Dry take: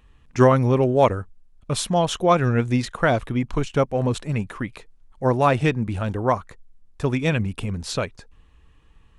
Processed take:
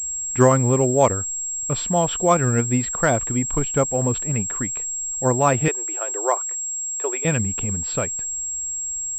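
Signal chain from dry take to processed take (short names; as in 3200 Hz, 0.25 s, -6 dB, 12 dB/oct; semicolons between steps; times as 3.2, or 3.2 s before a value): 5.68–7.25 elliptic high-pass 350 Hz, stop band 40 dB; pulse-width modulation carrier 7600 Hz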